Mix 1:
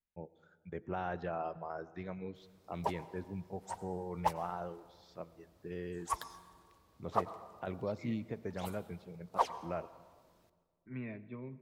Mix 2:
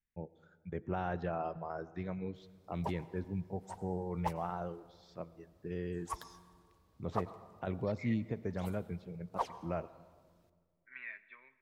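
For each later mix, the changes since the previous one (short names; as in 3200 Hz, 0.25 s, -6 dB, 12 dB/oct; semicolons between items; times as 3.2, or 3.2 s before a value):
second voice: add resonant high-pass 1700 Hz, resonance Q 3.4; background -5.5 dB; master: add low shelf 230 Hz +7 dB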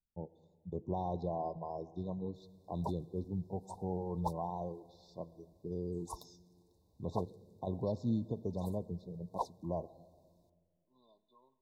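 background: send off; master: add brick-wall FIR band-stop 1100–3500 Hz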